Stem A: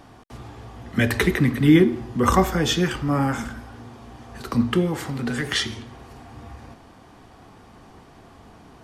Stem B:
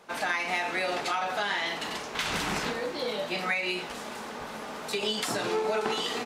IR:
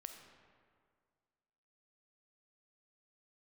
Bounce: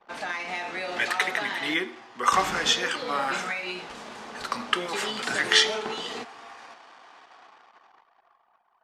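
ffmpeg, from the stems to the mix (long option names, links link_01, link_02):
-filter_complex "[0:a]dynaudnorm=framelen=320:gausssize=11:maxgain=11.5dB,highpass=950,volume=-2dB,asplit=2[link_01][link_02];[link_02]volume=-19.5dB[link_03];[1:a]volume=-4.5dB,asplit=3[link_04][link_05][link_06];[link_04]atrim=end=1.74,asetpts=PTS-STARTPTS,afade=type=out:start_time=1.736:duration=0.004:curve=hsin[link_07];[link_05]atrim=start=1.74:end=2.32,asetpts=PTS-STARTPTS,volume=0[link_08];[link_06]atrim=start=2.32,asetpts=PTS-STARTPTS,afade=type=in:duration=0.004:curve=hsin[link_09];[link_07][link_08][link_09]concat=n=3:v=0:a=1,asplit=2[link_10][link_11];[link_11]volume=-9.5dB[link_12];[2:a]atrim=start_sample=2205[link_13];[link_03][link_12]amix=inputs=2:normalize=0[link_14];[link_14][link_13]afir=irnorm=-1:irlink=0[link_15];[link_01][link_10][link_15]amix=inputs=3:normalize=0,lowpass=7800,anlmdn=0.00251"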